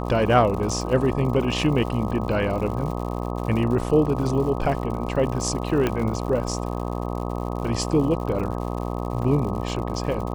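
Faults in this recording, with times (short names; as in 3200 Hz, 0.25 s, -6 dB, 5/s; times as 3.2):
buzz 60 Hz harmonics 21 -28 dBFS
crackle 120/s -32 dBFS
5.87 pop -9 dBFS
9.22 gap 3.7 ms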